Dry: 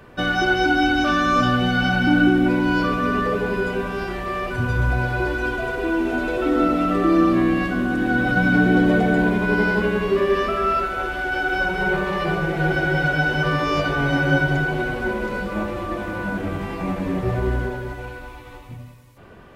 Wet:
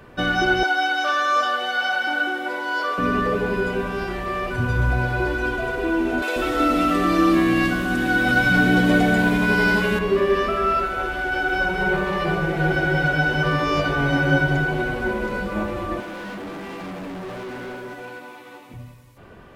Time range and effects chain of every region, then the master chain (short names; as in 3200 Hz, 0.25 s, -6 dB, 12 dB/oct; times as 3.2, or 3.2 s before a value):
0.63–2.98 HPF 490 Hz 24 dB/oct + notch 2500 Hz, Q 7.6
6.22–9.99 high shelf 2400 Hz +10.5 dB + bands offset in time highs, lows 0.14 s, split 340 Hz
16–18.74 HPF 180 Hz 24 dB/oct + doubler 49 ms -12 dB + hard clip -31 dBFS
whole clip: dry